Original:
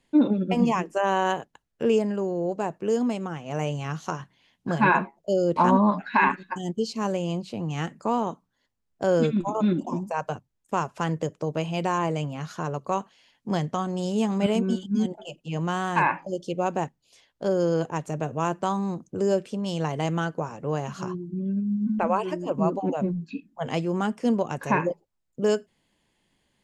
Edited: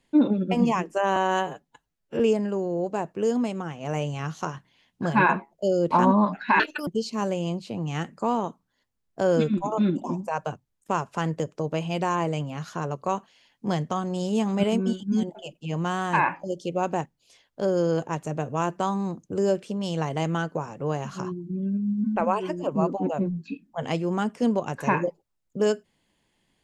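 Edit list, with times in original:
0:01.16–0:01.85: time-stretch 1.5×
0:06.25–0:06.70: play speed 163%

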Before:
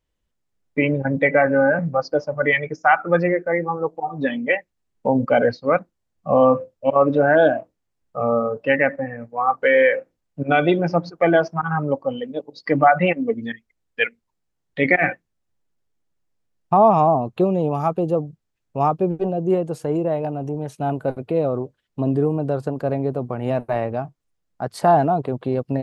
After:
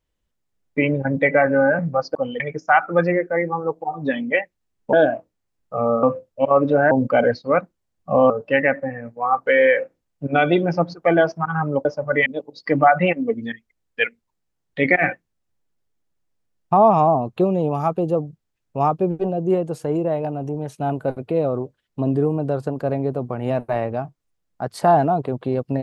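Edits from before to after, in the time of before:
0:02.15–0:02.56: swap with 0:12.01–0:12.26
0:05.09–0:06.48: swap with 0:07.36–0:08.46

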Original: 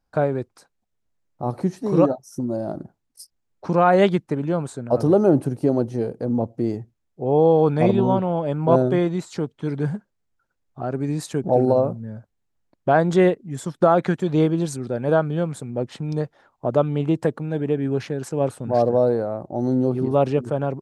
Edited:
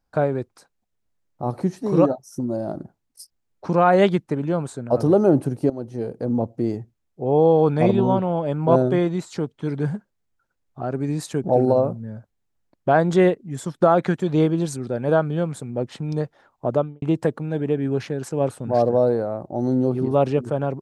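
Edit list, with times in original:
0:05.70–0:06.20: fade in, from −16 dB
0:16.69–0:17.02: fade out and dull

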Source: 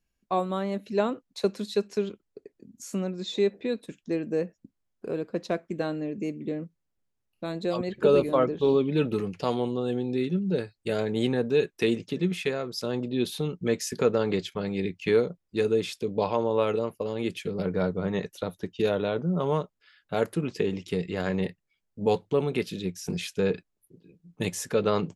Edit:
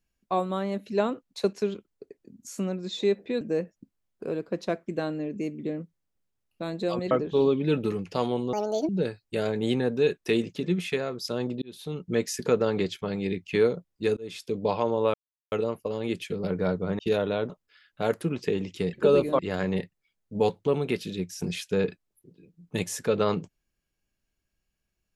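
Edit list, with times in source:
0:01.53–0:01.88: remove
0:03.76–0:04.23: remove
0:07.93–0:08.39: move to 0:21.05
0:09.81–0:10.42: play speed 170%
0:13.15–0:13.64: fade in
0:15.70–0:16.02: fade in
0:16.67: splice in silence 0.38 s
0:18.14–0:18.72: remove
0:19.23–0:19.62: remove

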